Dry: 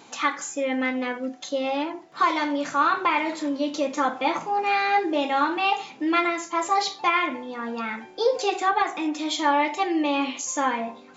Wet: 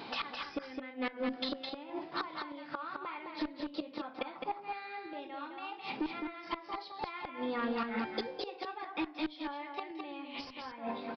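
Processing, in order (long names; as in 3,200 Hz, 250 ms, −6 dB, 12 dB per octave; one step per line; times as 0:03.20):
gate with flip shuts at −19 dBFS, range −26 dB
harmonic generator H 2 −11 dB, 5 −9 dB, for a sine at −16 dBFS
downward compressor, threshold −28 dBFS, peak gain reduction 7 dB
single-tap delay 211 ms −5 dB
downsampling to 11,025 Hz
level −4.5 dB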